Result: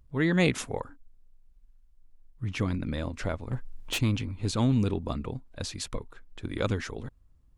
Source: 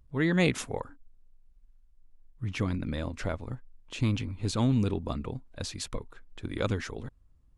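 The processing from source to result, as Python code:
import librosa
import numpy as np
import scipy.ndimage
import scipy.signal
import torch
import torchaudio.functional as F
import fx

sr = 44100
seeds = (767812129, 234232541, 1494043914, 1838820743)

y = fx.fold_sine(x, sr, drive_db=fx.line((3.51, 6.0), (3.97, 10.0)), ceiling_db=-26.0, at=(3.51, 3.97), fade=0.02)
y = y * librosa.db_to_amplitude(1.0)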